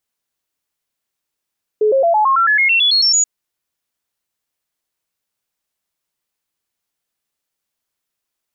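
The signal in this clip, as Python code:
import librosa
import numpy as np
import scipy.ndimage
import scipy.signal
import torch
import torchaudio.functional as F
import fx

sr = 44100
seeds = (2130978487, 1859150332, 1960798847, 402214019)

y = fx.stepped_sweep(sr, from_hz=427.0, direction='up', per_octave=3, tones=13, dwell_s=0.11, gap_s=0.0, level_db=-10.0)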